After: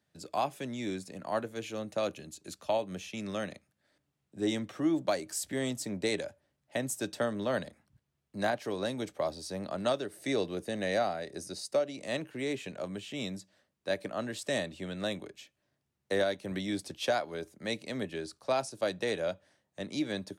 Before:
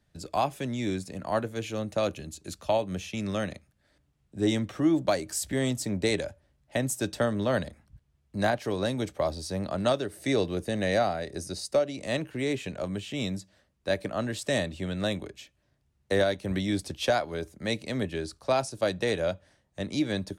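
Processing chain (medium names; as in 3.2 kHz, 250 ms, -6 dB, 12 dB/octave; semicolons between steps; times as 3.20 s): Bessel high-pass 180 Hz, order 2; trim -4 dB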